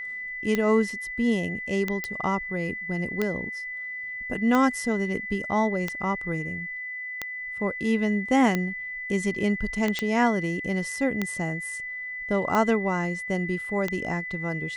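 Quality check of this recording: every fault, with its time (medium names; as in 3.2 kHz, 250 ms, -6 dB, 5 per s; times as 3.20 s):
tick 45 rpm -12 dBFS
whine 2 kHz -32 dBFS
2.04 s: pop -14 dBFS
9.99 s: pop -12 dBFS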